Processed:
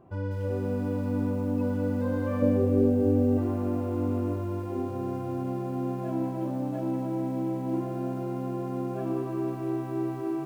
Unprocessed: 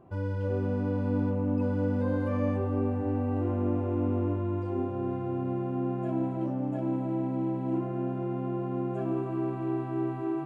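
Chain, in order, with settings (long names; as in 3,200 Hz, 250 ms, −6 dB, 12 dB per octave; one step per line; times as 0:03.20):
0:02.42–0:03.38: octave-band graphic EQ 125/250/500/1,000/2,000 Hz +4/+4/+9/−9/−4 dB
feedback echo at a low word length 199 ms, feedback 55%, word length 8 bits, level −11.5 dB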